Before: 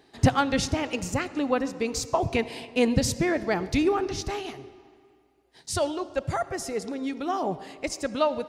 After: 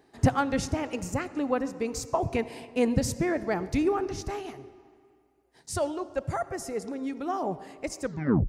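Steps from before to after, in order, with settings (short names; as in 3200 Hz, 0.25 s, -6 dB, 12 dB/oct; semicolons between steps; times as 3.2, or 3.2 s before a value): tape stop at the end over 0.46 s; bell 3600 Hz -8.5 dB 1.2 oct; gain -2 dB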